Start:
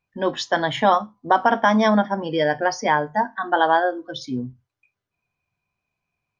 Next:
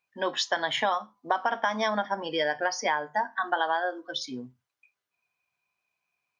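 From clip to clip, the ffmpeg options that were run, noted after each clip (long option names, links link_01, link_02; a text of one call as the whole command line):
ffmpeg -i in.wav -af "highpass=frequency=1000:poles=1,acompressor=threshold=-24dB:ratio=6,volume=1.5dB" out.wav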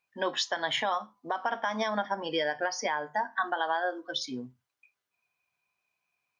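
ffmpeg -i in.wav -af "alimiter=limit=-18.5dB:level=0:latency=1:release=195" out.wav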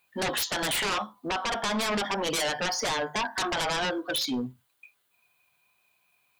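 ffmpeg -i in.wav -af "aexciter=amount=1.1:drive=6.1:freq=3100,aeval=exprs='0.168*sin(PI/2*5.62*val(0)/0.168)':channel_layout=same,volume=-9dB" out.wav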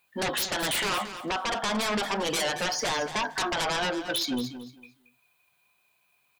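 ffmpeg -i in.wav -af "aecho=1:1:226|452|678:0.266|0.0559|0.0117" out.wav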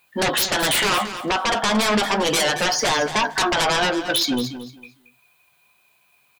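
ffmpeg -i in.wav -filter_complex "[0:a]asplit=2[link_01][link_02];[link_02]adelay=14,volume=-13dB[link_03];[link_01][link_03]amix=inputs=2:normalize=0,volume=8dB" out.wav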